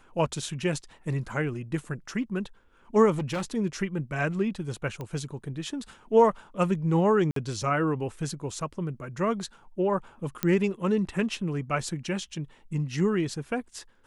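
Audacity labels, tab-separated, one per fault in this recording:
3.120000	3.440000	clipping −26 dBFS
5.010000	5.010000	click −23 dBFS
7.310000	7.360000	drop-out 53 ms
10.430000	10.430000	click −11 dBFS

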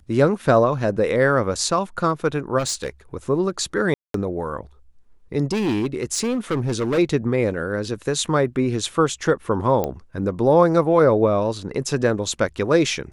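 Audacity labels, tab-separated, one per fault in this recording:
2.580000	2.880000	clipping −20 dBFS
3.940000	4.140000	drop-out 203 ms
5.520000	6.990000	clipping −18 dBFS
9.840000	9.840000	click −10 dBFS

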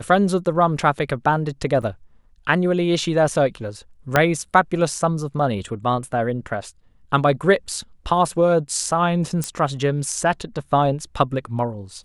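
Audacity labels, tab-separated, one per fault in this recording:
1.820000	1.830000	drop-out 5.8 ms
4.160000	4.160000	click −2 dBFS
9.440000	9.440000	click −10 dBFS

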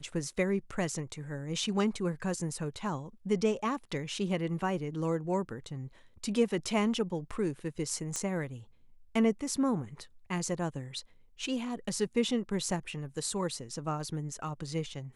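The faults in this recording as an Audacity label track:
8.160000	8.160000	click −20 dBFS

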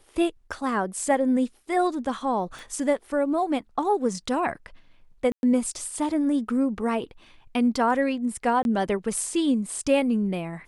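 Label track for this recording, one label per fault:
2.590000	2.590000	click
5.320000	5.430000	drop-out 111 ms
8.630000	8.650000	drop-out 21 ms

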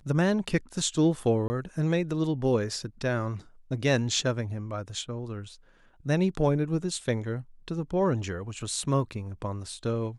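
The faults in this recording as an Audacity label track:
1.480000	1.500000	drop-out 20 ms

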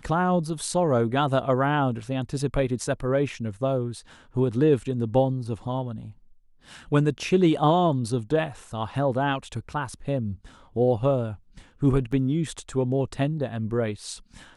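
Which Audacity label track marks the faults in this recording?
12.120000	12.120000	drop-out 4.9 ms

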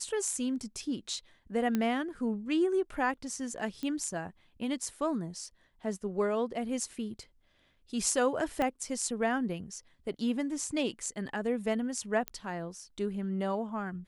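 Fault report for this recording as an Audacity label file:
1.750000	1.750000	click −17 dBFS
3.830000	3.830000	click −24 dBFS
8.620000	8.620000	click −18 dBFS
12.280000	12.280000	click −17 dBFS

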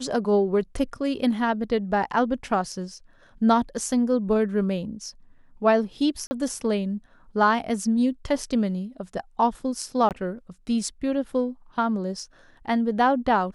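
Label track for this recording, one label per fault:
6.270000	6.310000	drop-out 40 ms
10.090000	10.110000	drop-out 18 ms

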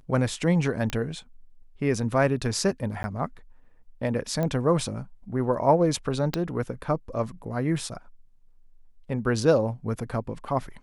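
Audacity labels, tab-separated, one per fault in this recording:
0.900000	0.900000	click −16 dBFS
3.030000	3.040000	drop-out 10 ms
4.430000	4.430000	click −16 dBFS
6.340000	6.340000	click −11 dBFS

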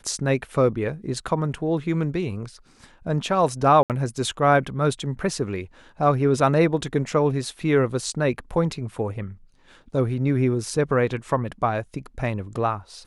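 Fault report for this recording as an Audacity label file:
3.830000	3.900000	drop-out 68 ms

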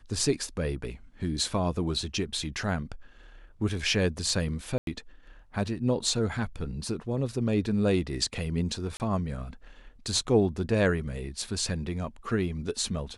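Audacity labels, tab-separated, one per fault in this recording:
4.780000	4.870000	drop-out 92 ms
8.970000	9.000000	drop-out 29 ms

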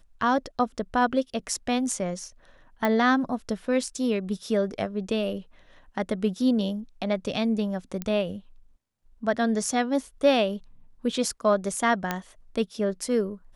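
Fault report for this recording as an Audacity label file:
2.850000	2.850000	click −12 dBFS
8.020000	8.020000	click −16 dBFS
12.110000	12.110000	click −11 dBFS

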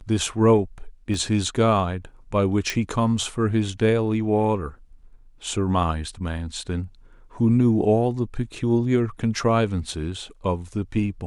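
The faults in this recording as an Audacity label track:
1.140000	1.140000	drop-out 2.2 ms
2.700000	2.700000	click −10 dBFS

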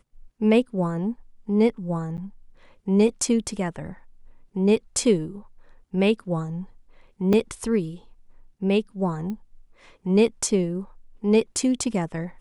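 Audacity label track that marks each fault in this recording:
2.170000	2.180000	drop-out 9.4 ms
7.330000	7.330000	drop-out 3.7 ms
9.300000	9.300000	click −22 dBFS

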